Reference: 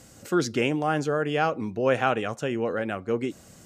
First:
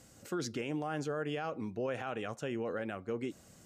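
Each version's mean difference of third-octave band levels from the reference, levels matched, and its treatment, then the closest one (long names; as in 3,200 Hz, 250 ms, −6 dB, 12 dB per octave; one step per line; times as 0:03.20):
2.5 dB: brickwall limiter −18.5 dBFS, peak gain reduction 10 dB
level −8 dB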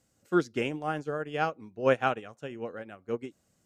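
6.5 dB: expander for the loud parts 2.5 to 1, over −33 dBFS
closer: first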